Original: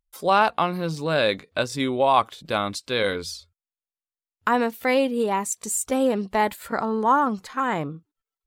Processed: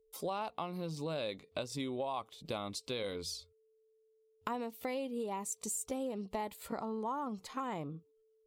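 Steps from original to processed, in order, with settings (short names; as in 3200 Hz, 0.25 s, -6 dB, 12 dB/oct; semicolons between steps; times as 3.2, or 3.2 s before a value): bell 1600 Hz -12 dB 0.54 oct; compressor 5:1, threshold -31 dBFS, peak gain reduction 15 dB; whine 440 Hz -64 dBFS; gain -5 dB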